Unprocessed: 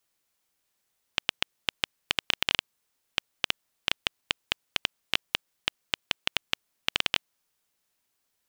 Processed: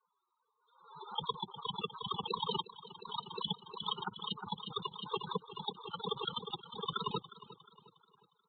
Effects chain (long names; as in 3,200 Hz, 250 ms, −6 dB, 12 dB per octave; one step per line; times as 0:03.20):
high-shelf EQ 2,700 Hz −9 dB
cochlear-implant simulation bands 6
in parallel at −6 dB: gain into a clipping stage and back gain 25 dB
on the sum: phaser with its sweep stopped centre 420 Hz, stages 8
spectral peaks only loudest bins 16
on a send: repeating echo 358 ms, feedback 42%, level −16.5 dB
on the sum: downsampling to 8,000 Hz
background raised ahead of every attack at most 78 dB per second
level +5 dB